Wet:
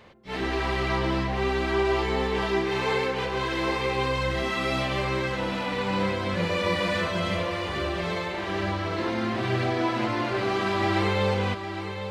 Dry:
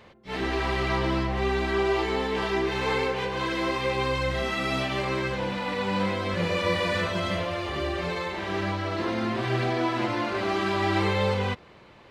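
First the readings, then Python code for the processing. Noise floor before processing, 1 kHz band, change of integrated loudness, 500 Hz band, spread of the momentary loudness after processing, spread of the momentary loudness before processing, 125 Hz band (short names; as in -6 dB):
-52 dBFS, +0.5 dB, +0.5 dB, +0.5 dB, 5 LU, 5 LU, +0.5 dB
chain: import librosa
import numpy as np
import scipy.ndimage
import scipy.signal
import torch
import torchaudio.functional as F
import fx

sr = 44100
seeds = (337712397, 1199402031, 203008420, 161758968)

y = x + 10.0 ** (-9.0 / 20.0) * np.pad(x, (int(809 * sr / 1000.0), 0))[:len(x)]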